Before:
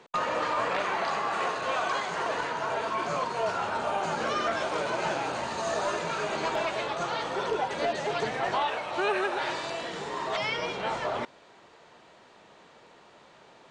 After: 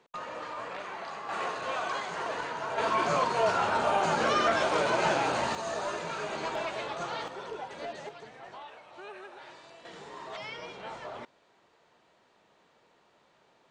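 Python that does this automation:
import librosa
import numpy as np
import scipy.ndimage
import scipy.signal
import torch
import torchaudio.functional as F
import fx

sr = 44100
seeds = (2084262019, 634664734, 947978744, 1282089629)

y = fx.gain(x, sr, db=fx.steps((0.0, -10.5), (1.29, -4.0), (2.78, 3.0), (5.55, -4.5), (7.28, -10.5), (8.09, -18.0), (9.85, -10.5)))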